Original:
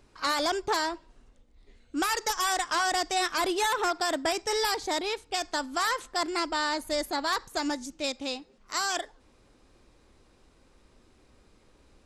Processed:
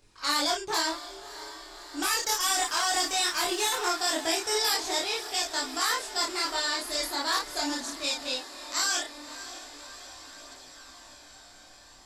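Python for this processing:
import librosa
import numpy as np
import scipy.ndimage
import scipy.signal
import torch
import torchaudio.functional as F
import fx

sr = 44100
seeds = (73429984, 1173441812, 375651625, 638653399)

y = fx.backlash(x, sr, play_db=-50.5, at=(2.15, 3.86))
y = fx.high_shelf(y, sr, hz=2500.0, db=10.5)
y = fx.doubler(y, sr, ms=31.0, db=-3.0)
y = fx.echo_diffused(y, sr, ms=602, feedback_pct=72, wet_db=-14.5)
y = fx.chorus_voices(y, sr, voices=2, hz=0.19, base_ms=22, depth_ms=3.7, mix_pct=50)
y = y * 10.0 ** (-2.5 / 20.0)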